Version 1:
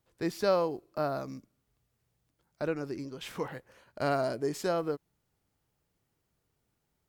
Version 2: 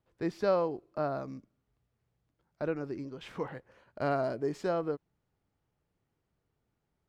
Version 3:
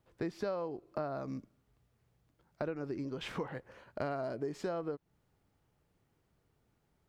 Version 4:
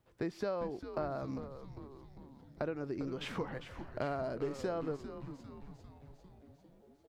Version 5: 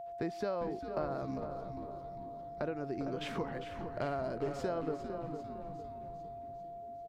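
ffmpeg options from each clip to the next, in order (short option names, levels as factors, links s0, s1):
-af "aemphasis=mode=reproduction:type=75fm,volume=0.841"
-af "acompressor=threshold=0.01:ratio=6,volume=1.88"
-filter_complex "[0:a]asplit=9[s0][s1][s2][s3][s4][s5][s6][s7][s8];[s1]adelay=400,afreqshift=-140,volume=0.316[s9];[s2]adelay=800,afreqshift=-280,volume=0.195[s10];[s3]adelay=1200,afreqshift=-420,volume=0.122[s11];[s4]adelay=1600,afreqshift=-560,volume=0.075[s12];[s5]adelay=2000,afreqshift=-700,volume=0.0468[s13];[s6]adelay=2400,afreqshift=-840,volume=0.0288[s14];[s7]adelay=2800,afreqshift=-980,volume=0.018[s15];[s8]adelay=3200,afreqshift=-1120,volume=0.0111[s16];[s0][s9][s10][s11][s12][s13][s14][s15][s16]amix=inputs=9:normalize=0"
-filter_complex "[0:a]aeval=exprs='val(0)+0.00794*sin(2*PI*690*n/s)':c=same,asplit=2[s0][s1];[s1]adelay=456,lowpass=f=1400:p=1,volume=0.398,asplit=2[s2][s3];[s3]adelay=456,lowpass=f=1400:p=1,volume=0.41,asplit=2[s4][s5];[s5]adelay=456,lowpass=f=1400:p=1,volume=0.41,asplit=2[s6][s7];[s7]adelay=456,lowpass=f=1400:p=1,volume=0.41,asplit=2[s8][s9];[s9]adelay=456,lowpass=f=1400:p=1,volume=0.41[s10];[s0][s2][s4][s6][s8][s10]amix=inputs=6:normalize=0"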